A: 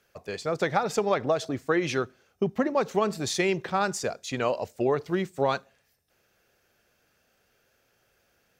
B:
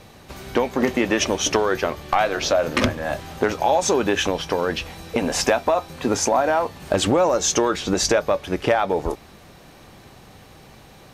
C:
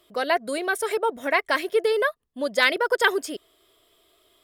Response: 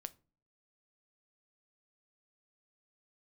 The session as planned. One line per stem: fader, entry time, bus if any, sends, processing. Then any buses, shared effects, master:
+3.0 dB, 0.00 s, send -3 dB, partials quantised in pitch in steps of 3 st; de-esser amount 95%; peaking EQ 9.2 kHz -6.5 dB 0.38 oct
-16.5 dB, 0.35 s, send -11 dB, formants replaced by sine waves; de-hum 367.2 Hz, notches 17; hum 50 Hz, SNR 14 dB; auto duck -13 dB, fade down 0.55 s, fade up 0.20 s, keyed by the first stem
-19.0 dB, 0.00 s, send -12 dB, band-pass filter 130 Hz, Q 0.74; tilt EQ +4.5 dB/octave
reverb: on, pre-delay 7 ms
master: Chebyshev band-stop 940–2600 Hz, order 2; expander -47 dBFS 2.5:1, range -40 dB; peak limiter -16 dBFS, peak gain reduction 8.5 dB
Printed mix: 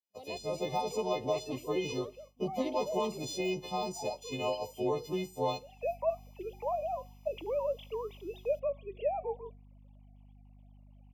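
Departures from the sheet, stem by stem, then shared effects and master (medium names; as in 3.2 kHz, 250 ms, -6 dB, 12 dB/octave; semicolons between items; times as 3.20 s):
stem A +3.0 dB -> -9.0 dB; stem C -19.0 dB -> -9.0 dB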